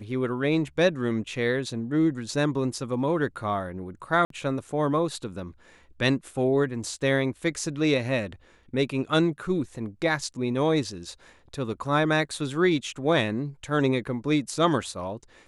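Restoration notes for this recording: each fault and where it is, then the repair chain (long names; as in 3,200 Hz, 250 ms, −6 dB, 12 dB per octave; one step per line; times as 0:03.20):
0:04.25–0:04.30: drop-out 53 ms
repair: repair the gap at 0:04.25, 53 ms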